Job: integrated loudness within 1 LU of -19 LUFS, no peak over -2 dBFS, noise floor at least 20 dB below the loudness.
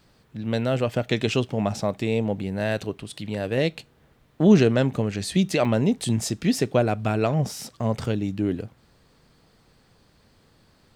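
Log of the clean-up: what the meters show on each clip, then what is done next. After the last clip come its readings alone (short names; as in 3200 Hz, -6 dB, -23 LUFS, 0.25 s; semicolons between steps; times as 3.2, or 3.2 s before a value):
dropouts 1; longest dropout 2.3 ms; loudness -24.0 LUFS; peak -5.5 dBFS; loudness target -19.0 LUFS
-> interpolate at 5.65, 2.3 ms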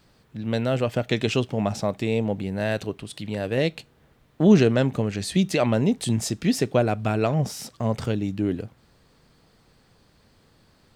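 dropouts 0; loudness -24.0 LUFS; peak -5.5 dBFS; loudness target -19.0 LUFS
-> gain +5 dB; limiter -2 dBFS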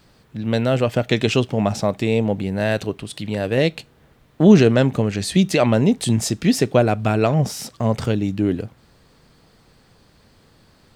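loudness -19.5 LUFS; peak -2.0 dBFS; noise floor -55 dBFS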